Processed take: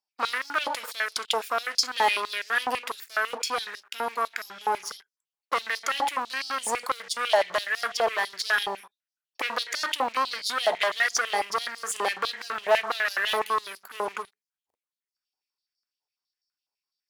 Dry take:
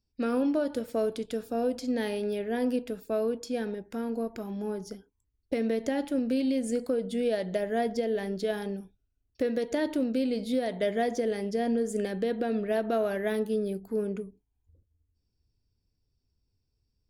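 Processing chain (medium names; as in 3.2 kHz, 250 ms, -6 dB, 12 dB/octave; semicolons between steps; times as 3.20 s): waveshaping leveller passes 3; step-sequenced high-pass 12 Hz 840–5000 Hz; trim +1.5 dB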